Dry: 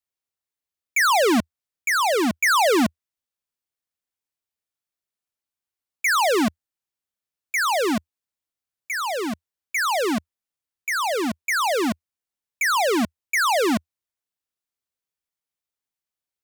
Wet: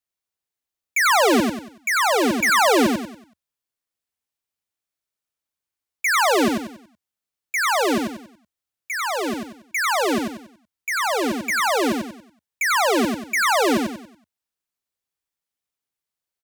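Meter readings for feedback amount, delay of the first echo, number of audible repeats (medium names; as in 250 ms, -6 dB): 36%, 94 ms, 4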